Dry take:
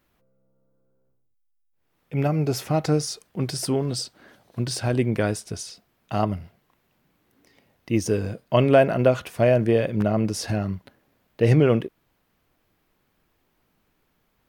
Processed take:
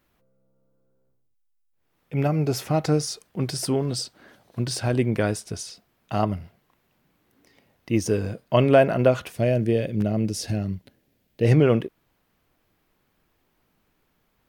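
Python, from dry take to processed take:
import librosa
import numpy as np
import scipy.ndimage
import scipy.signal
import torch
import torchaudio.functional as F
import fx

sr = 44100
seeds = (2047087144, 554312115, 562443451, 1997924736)

y = fx.peak_eq(x, sr, hz=1100.0, db=-12.0, octaves=1.5, at=(9.32, 11.45))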